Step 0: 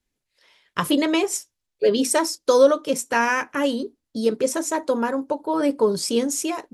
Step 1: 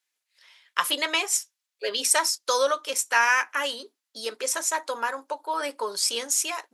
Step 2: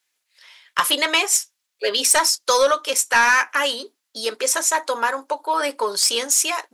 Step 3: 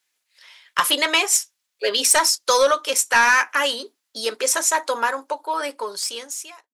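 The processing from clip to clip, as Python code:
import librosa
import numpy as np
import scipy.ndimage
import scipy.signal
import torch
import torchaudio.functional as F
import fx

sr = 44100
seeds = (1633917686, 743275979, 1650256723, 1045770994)

y1 = scipy.signal.sosfilt(scipy.signal.butter(2, 1100.0, 'highpass', fs=sr, output='sos'), x)
y1 = F.gain(torch.from_numpy(y1), 3.0).numpy()
y2 = 10.0 ** (-14.5 / 20.0) * np.tanh(y1 / 10.0 ** (-14.5 / 20.0))
y2 = F.gain(torch.from_numpy(y2), 7.5).numpy()
y3 = fx.fade_out_tail(y2, sr, length_s=1.76)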